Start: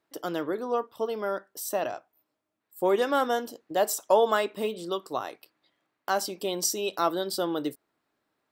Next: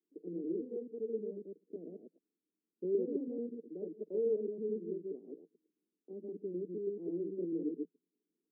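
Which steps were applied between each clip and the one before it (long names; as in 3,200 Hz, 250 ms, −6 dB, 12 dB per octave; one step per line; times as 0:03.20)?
delay that plays each chunk backwards 109 ms, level 0 dB
Chebyshev band-pass filter 170–450 Hz, order 4
level −8 dB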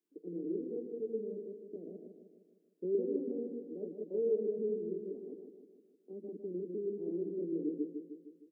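repeating echo 154 ms, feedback 54%, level −7 dB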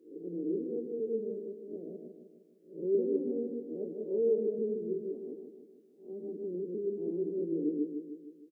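peak hold with a rise ahead of every peak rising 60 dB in 0.43 s
double-tracking delay 13 ms −11 dB
level +2 dB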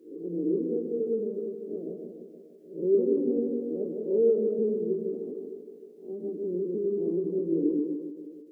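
echo with a time of its own for lows and highs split 420 Hz, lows 108 ms, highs 301 ms, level −11 dB
every ending faded ahead of time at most 110 dB per second
level +6.5 dB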